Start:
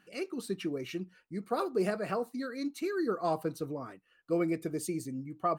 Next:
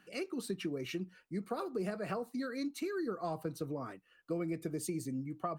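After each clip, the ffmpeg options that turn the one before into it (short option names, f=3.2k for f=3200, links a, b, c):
-filter_complex "[0:a]acrossover=split=160[a][b];[b]acompressor=threshold=-36dB:ratio=6[c];[a][c]amix=inputs=2:normalize=0,volume=1dB"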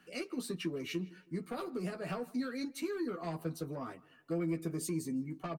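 -filter_complex "[0:a]acrossover=split=300|2500[a][b][c];[b]asoftclip=type=tanh:threshold=-37.5dB[d];[a][d][c]amix=inputs=3:normalize=0,asplit=2[e][f];[f]adelay=12,volume=-4dB[g];[e][g]amix=inputs=2:normalize=0,asplit=2[h][i];[i]adelay=160,lowpass=f=4.1k:p=1,volume=-21.5dB,asplit=2[j][k];[k]adelay=160,lowpass=f=4.1k:p=1,volume=0.41,asplit=2[l][m];[m]adelay=160,lowpass=f=4.1k:p=1,volume=0.41[n];[h][j][l][n]amix=inputs=4:normalize=0"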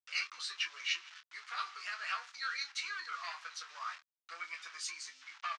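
-filter_complex "[0:a]aeval=exprs='val(0)*gte(abs(val(0)),0.00266)':c=same,asuperpass=centerf=2800:order=8:qfactor=0.55,asplit=2[a][b];[b]adelay=26,volume=-8.5dB[c];[a][c]amix=inputs=2:normalize=0,volume=9dB"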